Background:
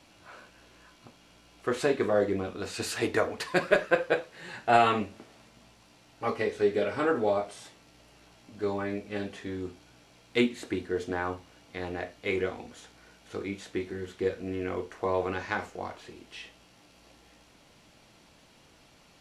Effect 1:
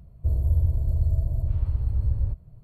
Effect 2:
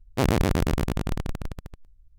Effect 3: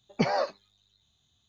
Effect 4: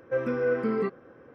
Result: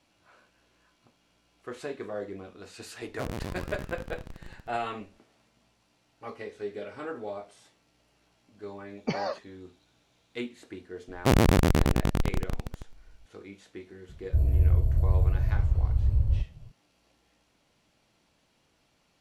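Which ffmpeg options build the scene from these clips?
-filter_complex "[2:a]asplit=2[s0][s1];[0:a]volume=0.299[s2];[s0]aecho=1:1:236:0.168[s3];[s1]acontrast=31[s4];[s3]atrim=end=2.18,asetpts=PTS-STARTPTS,volume=0.211,afade=t=in:d=0.004:c=hsin,afade=t=out:st=2.176:d=0.004:c=hsin,adelay=3010[s5];[3:a]atrim=end=1.48,asetpts=PTS-STARTPTS,volume=0.596,afade=t=in:d=0.004:c=hsin,afade=t=out:st=1.476:d=0.004:c=hsin,adelay=8880[s6];[s4]atrim=end=2.18,asetpts=PTS-STARTPTS,volume=0.668,afade=t=in:d=0.004:c=hsin,afade=t=out:st=2.176:d=0.004:c=hsin,adelay=11080[s7];[1:a]atrim=end=2.63,asetpts=PTS-STARTPTS,afade=t=in:d=0.004:c=hsin,afade=t=out:st=2.626:d=0.004:c=hsin,adelay=14090[s8];[s2][s5][s6][s7][s8]amix=inputs=5:normalize=0"

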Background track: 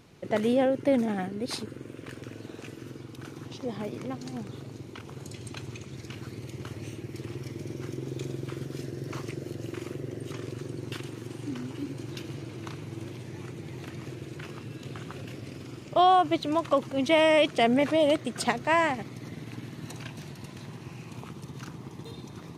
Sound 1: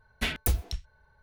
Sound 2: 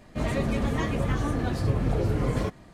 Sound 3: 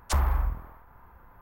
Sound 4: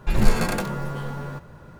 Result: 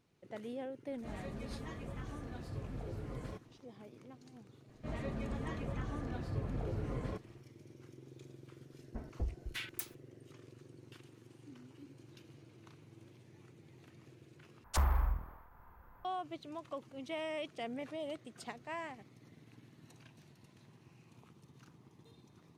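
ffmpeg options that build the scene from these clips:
-filter_complex "[2:a]asplit=2[s0][s1];[0:a]volume=0.112[s2];[s1]aemphasis=mode=reproduction:type=cd[s3];[1:a]acrossover=split=960[s4][s5];[s5]adelay=600[s6];[s4][s6]amix=inputs=2:normalize=0[s7];[s2]asplit=2[s8][s9];[s8]atrim=end=14.644[s10];[3:a]atrim=end=1.41,asetpts=PTS-STARTPTS,volume=0.501[s11];[s9]atrim=start=16.046[s12];[s0]atrim=end=2.73,asetpts=PTS-STARTPTS,volume=0.126,afade=t=in:d=0.004:c=hsin,afade=t=out:st=2.726:d=0.004:c=hsin,adelay=880[s13];[s3]atrim=end=2.73,asetpts=PTS-STARTPTS,volume=0.211,afade=t=in:d=0.004:c=hsin,afade=t=out:st=2.726:d=0.004:c=hsin,adelay=4680[s14];[s7]atrim=end=1.22,asetpts=PTS-STARTPTS,volume=0.299,afade=t=in:d=0.004:c=hsin,afade=t=out:st=1.216:d=0.004:c=hsin,adelay=8730[s15];[s10][s11]acrossfade=d=0.004:c1=hsin:c2=hsin[s16];[s16][s12]acrossfade=d=0.004:c1=hsin:c2=hsin[s17];[s17][s13][s14][s15]amix=inputs=4:normalize=0"

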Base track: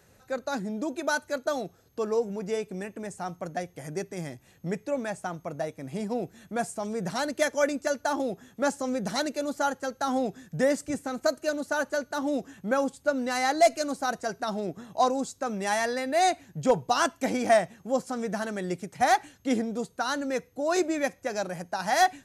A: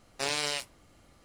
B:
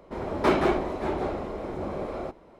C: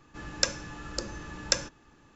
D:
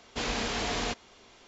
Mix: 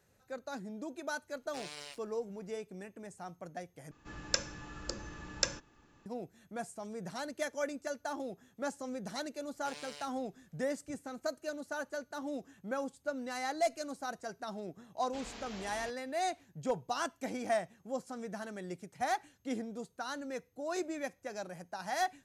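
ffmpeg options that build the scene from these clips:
-filter_complex "[1:a]asplit=2[s0][s1];[0:a]volume=0.282,asplit=2[s2][s3];[s2]atrim=end=3.914[s4];[3:a]atrim=end=2.15,asetpts=PTS-STARTPTS,volume=0.531[s5];[s3]atrim=start=6.056[s6];[s0]atrim=end=1.24,asetpts=PTS-STARTPTS,volume=0.168,afade=t=in:d=0.004:c=hsin,afade=t=out:st=1.236:d=0.004:c=hsin,adelay=1340[s7];[s1]atrim=end=1.24,asetpts=PTS-STARTPTS,volume=0.133,afade=t=in:d=0.004:c=hsin,afade=t=out:st=1.236:d=0.004:c=hsin,adelay=9450[s8];[4:a]atrim=end=1.47,asetpts=PTS-STARTPTS,volume=0.15,afade=t=in:d=0.004:c=hsin,afade=t=out:st=1.466:d=0.004:c=hsin,adelay=14970[s9];[s4][s5]acrossfade=d=0.004:c1=hsin:c2=hsin[s10];[s10][s6]acrossfade=d=0.004:c1=hsin:c2=hsin[s11];[s11][s7][s8][s9]amix=inputs=4:normalize=0"

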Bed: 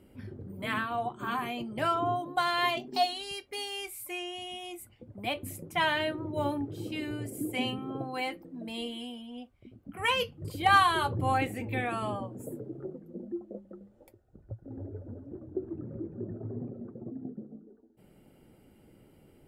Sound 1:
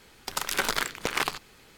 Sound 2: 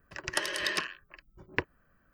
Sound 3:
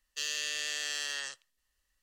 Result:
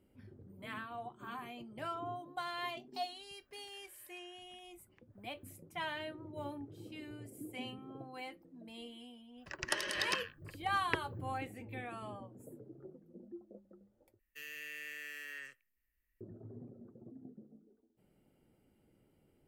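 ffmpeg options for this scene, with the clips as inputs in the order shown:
-filter_complex "[2:a]asplit=2[s0][s1];[0:a]volume=0.237[s2];[s0]acompressor=threshold=0.00158:ratio=6:attack=3.2:release=140:knee=1:detection=peak[s3];[3:a]firequalizer=gain_entry='entry(290,0);entry(470,-5);entry(750,-21);entry(1500,-7);entry(2300,2);entry(3500,-25);entry(5000,-24);entry(7300,-20);entry(13000,2)':delay=0.05:min_phase=1[s4];[s2]asplit=2[s5][s6];[s5]atrim=end=14.194[s7];[s4]atrim=end=2.02,asetpts=PTS-STARTPTS,volume=0.75[s8];[s6]atrim=start=16.206[s9];[s3]atrim=end=2.13,asetpts=PTS-STARTPTS,volume=0.266,afade=t=in:d=0.004:c=hsin,afade=t=out:st=2.126:d=0.004:c=hsin,adelay=3400[s10];[s1]atrim=end=2.13,asetpts=PTS-STARTPTS,volume=0.596,afade=t=in:d=0.1,afade=t=out:st=2.03:d=0.1,adelay=9350[s11];[s7][s8]acrossfade=d=0.004:c1=hsin:c2=hsin[s12];[s12][s9]acrossfade=d=0.004:c1=hsin:c2=hsin[s13];[s13][s10][s11]amix=inputs=3:normalize=0"

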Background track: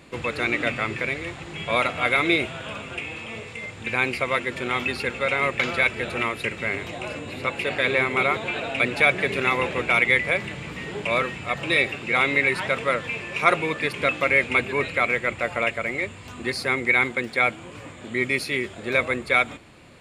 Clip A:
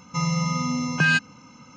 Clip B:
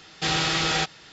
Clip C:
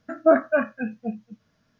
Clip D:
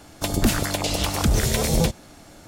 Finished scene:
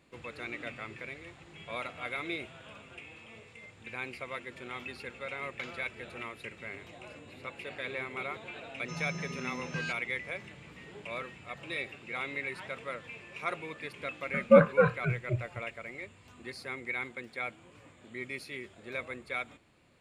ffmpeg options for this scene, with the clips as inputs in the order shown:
-filter_complex "[0:a]volume=0.158[s0];[1:a]equalizer=f=910:t=o:w=2:g=-5.5[s1];[3:a]afreqshift=-95[s2];[s1]atrim=end=1.76,asetpts=PTS-STARTPTS,volume=0.178,afade=t=in:d=0.004:c=hsin,afade=t=out:st=1.756:d=0.004:c=hsin,adelay=385434S[s3];[s2]atrim=end=1.79,asetpts=PTS-STARTPTS,volume=0.794,afade=t=in:d=0.004:c=hsin,afade=t=out:st=1.786:d=0.004:c=hsin,adelay=14250[s4];[s0][s3][s4]amix=inputs=3:normalize=0"

